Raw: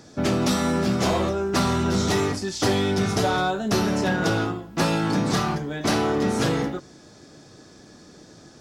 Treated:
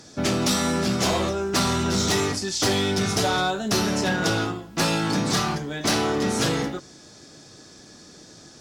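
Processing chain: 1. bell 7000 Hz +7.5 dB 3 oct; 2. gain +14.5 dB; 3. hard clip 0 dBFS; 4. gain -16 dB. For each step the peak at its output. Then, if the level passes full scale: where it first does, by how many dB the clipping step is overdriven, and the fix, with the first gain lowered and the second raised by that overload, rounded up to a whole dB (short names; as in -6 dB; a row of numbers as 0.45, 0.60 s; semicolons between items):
-7.5, +7.0, 0.0, -16.0 dBFS; step 2, 7.0 dB; step 2 +7.5 dB, step 4 -9 dB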